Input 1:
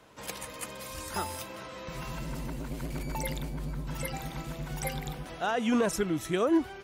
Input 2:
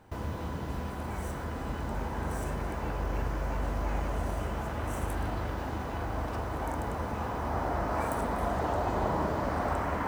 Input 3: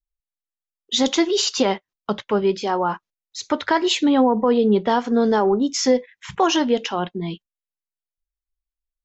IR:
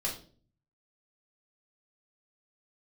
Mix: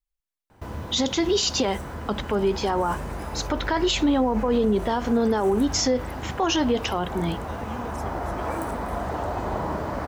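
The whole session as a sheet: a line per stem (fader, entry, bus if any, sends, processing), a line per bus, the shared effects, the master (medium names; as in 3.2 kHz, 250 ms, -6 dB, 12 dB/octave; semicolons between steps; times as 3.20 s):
-12.0 dB, 2.05 s, no send, none
+1.5 dB, 0.50 s, no send, none
+0.5 dB, 0.00 s, no send, none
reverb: none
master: peak limiter -14 dBFS, peak gain reduction 8 dB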